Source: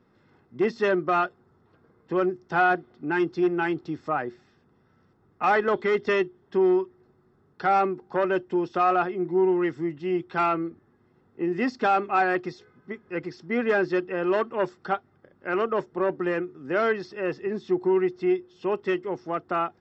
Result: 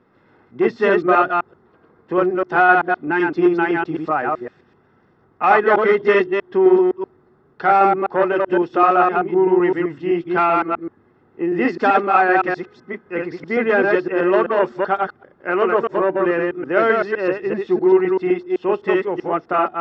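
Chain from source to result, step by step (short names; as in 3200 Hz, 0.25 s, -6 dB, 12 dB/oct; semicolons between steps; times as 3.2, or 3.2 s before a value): reverse delay 0.128 s, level -2 dB; tone controls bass -6 dB, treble -13 dB; gain +7 dB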